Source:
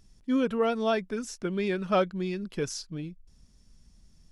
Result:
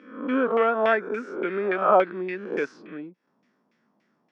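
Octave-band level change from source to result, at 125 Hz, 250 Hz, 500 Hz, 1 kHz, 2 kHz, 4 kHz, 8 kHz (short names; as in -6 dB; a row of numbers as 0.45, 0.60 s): -8.0 dB, -0.5 dB, +5.5 dB, +9.0 dB, +9.0 dB, -5.0 dB, under -20 dB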